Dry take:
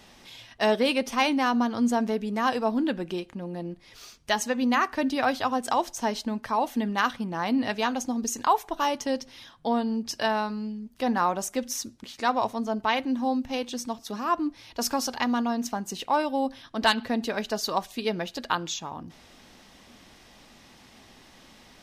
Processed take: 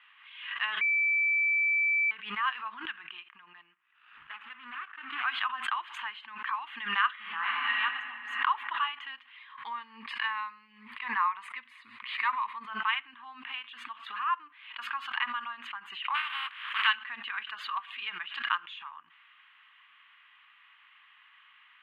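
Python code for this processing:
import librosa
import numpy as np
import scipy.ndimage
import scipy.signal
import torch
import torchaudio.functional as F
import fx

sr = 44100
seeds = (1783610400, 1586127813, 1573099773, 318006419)

y = fx.median_filter(x, sr, points=41, at=(3.72, 5.23), fade=0.02)
y = fx.reverb_throw(y, sr, start_s=7.13, length_s=0.58, rt60_s=2.2, drr_db=-7.0)
y = fx.ripple_eq(y, sr, per_octave=0.93, db=9, at=(9.36, 12.68))
y = fx.spec_flatten(y, sr, power=0.29, at=(16.14, 16.86), fade=0.02)
y = fx.edit(y, sr, fx.bleep(start_s=0.81, length_s=1.3, hz=2320.0, db=-22.5), tone=tone)
y = scipy.signal.sosfilt(scipy.signal.ellip(3, 1.0, 40, [1100.0, 3000.0], 'bandpass', fs=sr, output='sos'), y)
y = fx.pre_swell(y, sr, db_per_s=74.0)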